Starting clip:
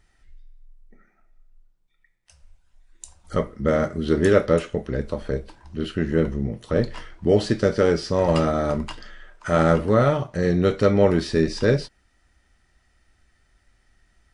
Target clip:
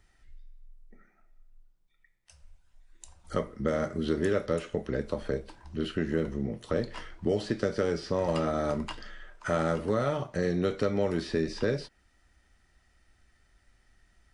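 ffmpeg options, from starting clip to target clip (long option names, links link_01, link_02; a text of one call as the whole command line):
ffmpeg -i in.wav -filter_complex "[0:a]acrossover=split=180|3800[link_01][link_02][link_03];[link_01]acompressor=threshold=-36dB:ratio=4[link_04];[link_02]acompressor=threshold=-23dB:ratio=4[link_05];[link_03]acompressor=threshold=-46dB:ratio=4[link_06];[link_04][link_05][link_06]amix=inputs=3:normalize=0,volume=-2.5dB" out.wav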